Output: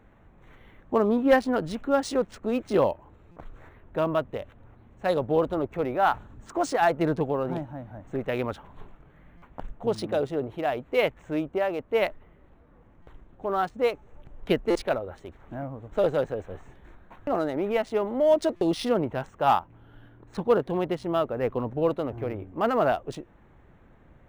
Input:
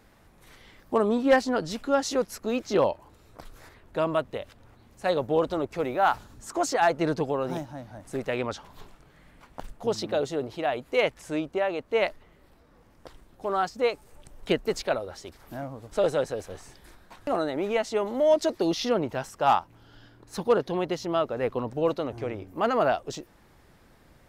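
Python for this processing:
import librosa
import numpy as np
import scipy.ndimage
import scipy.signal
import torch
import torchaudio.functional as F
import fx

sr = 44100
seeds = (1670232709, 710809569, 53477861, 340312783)

y = fx.wiener(x, sr, points=9)
y = fx.low_shelf(y, sr, hz=220.0, db=4.0)
y = fx.buffer_glitch(y, sr, at_s=(3.31, 9.37, 13.02, 14.7, 18.56), block=256, repeats=8)
y = np.interp(np.arange(len(y)), np.arange(len(y))[::3], y[::3])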